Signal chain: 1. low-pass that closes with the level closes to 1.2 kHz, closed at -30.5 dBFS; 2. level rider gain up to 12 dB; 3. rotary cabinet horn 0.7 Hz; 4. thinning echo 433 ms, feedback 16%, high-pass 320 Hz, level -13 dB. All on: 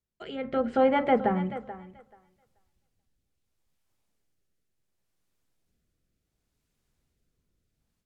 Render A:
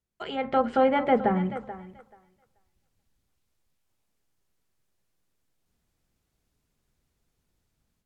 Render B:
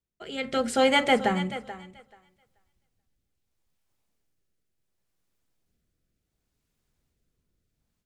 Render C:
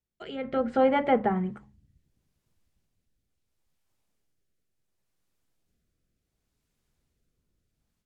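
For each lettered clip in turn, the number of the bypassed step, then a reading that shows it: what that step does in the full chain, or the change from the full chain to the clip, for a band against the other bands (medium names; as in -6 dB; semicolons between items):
3, 4 kHz band +1.5 dB; 1, 4 kHz band +15.0 dB; 4, momentary loudness spread change -4 LU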